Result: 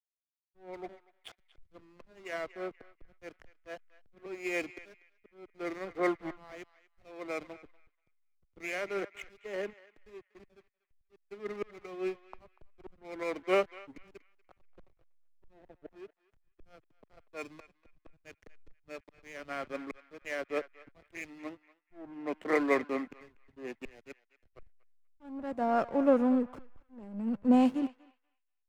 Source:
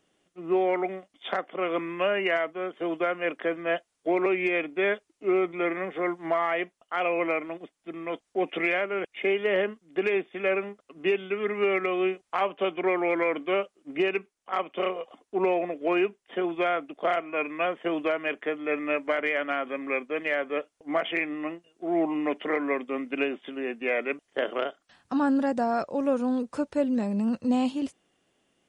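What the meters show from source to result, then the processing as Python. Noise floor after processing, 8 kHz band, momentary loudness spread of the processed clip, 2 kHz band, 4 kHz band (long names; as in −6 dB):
−80 dBFS, can't be measured, 24 LU, −12.0 dB, −12.5 dB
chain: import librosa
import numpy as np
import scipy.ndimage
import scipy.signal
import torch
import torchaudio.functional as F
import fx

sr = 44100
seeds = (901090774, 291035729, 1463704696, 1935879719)

p1 = fx.peak_eq(x, sr, hz=3800.0, db=-8.0, octaves=0.31)
p2 = fx.auto_swell(p1, sr, attack_ms=753.0)
p3 = fx.backlash(p2, sr, play_db=-34.5)
p4 = p3 + fx.echo_banded(p3, sr, ms=241, feedback_pct=44, hz=2000.0, wet_db=-11.5, dry=0)
p5 = fx.band_widen(p4, sr, depth_pct=70)
y = p5 * librosa.db_to_amplitude(-4.5)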